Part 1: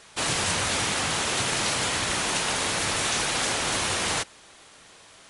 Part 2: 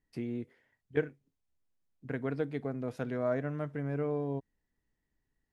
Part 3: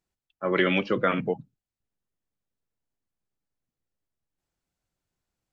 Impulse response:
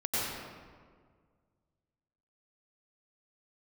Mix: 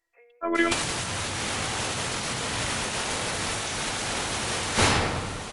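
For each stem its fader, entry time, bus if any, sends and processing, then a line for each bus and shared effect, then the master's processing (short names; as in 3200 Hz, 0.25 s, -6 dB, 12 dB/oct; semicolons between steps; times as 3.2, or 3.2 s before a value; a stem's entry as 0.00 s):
+2.5 dB, 0.55 s, send -10 dB, dry
-2.0 dB, 0.00 s, no send, Chebyshev band-pass 490–2500 Hz, order 5; comb 4.2 ms, depth 99%; auto duck -22 dB, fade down 0.45 s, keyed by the third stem
-3.0 dB, 0.00 s, no send, treble ducked by the level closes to 2800 Hz, closed at -25.5 dBFS; low shelf 280 Hz -10 dB; robotiser 337 Hz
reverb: on, RT60 1.8 s, pre-delay 86 ms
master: negative-ratio compressor -26 dBFS, ratio -0.5; low shelf 130 Hz +5.5 dB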